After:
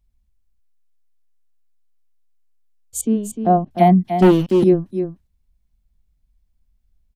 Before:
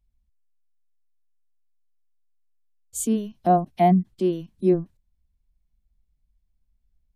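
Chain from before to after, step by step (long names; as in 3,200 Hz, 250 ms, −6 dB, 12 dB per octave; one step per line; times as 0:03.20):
0:03.01–0:03.71: head-to-tape spacing loss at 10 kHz 31 dB
single-tap delay 302 ms −8.5 dB
0:04.22–0:04.64: leveller curve on the samples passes 3
level +5 dB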